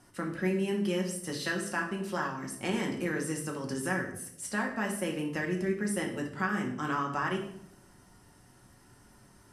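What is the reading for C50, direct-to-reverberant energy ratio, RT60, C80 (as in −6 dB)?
7.0 dB, 0.0 dB, 0.80 s, 11.0 dB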